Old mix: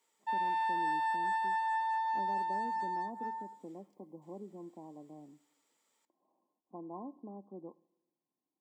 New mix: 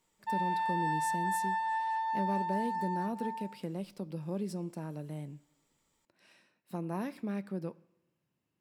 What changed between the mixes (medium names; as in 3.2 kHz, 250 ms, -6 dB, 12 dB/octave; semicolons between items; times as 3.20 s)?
speech: remove rippled Chebyshev low-pass 1.1 kHz, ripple 9 dB; master: remove high-pass 340 Hz 12 dB/octave